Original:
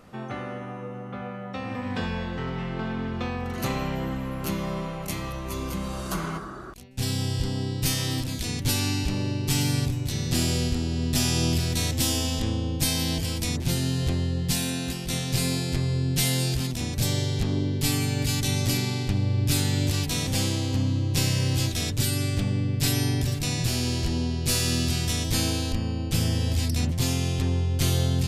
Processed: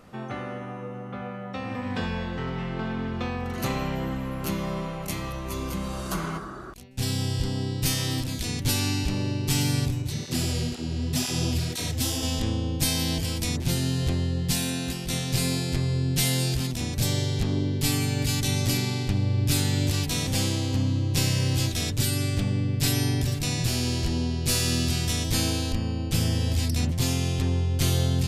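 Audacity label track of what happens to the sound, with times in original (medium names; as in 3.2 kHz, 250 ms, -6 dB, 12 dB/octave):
10.020000	12.230000	cancelling through-zero flanger nulls at 2 Hz, depth 6.1 ms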